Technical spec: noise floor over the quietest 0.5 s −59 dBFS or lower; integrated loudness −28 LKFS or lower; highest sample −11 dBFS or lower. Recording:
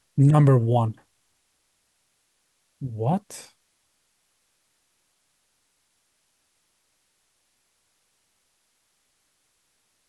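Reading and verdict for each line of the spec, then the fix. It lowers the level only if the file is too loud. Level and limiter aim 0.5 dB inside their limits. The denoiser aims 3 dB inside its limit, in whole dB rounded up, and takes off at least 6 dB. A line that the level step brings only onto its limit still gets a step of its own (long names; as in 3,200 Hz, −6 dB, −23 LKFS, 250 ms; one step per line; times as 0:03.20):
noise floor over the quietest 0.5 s −71 dBFS: in spec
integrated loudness −21.5 LKFS: out of spec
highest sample −5.5 dBFS: out of spec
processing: level −7 dB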